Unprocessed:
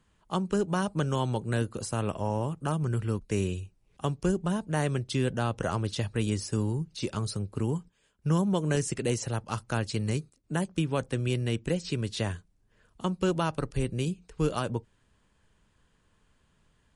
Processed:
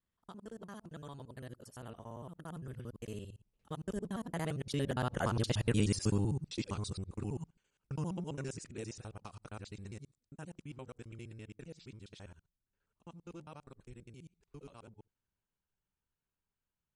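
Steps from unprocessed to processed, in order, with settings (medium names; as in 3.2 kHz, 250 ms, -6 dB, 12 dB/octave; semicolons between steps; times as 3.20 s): time reversed locally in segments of 62 ms; Doppler pass-by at 5.76 s, 28 m/s, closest 17 m; trim -1 dB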